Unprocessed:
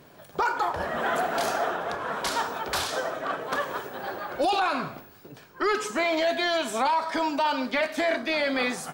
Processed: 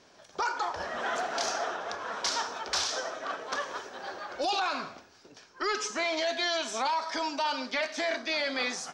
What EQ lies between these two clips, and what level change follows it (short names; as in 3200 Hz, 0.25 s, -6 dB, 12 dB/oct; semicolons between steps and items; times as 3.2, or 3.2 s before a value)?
synth low-pass 5800 Hz, resonance Q 3.6; bell 140 Hz -13 dB 0.28 oct; low shelf 400 Hz -6 dB; -4.5 dB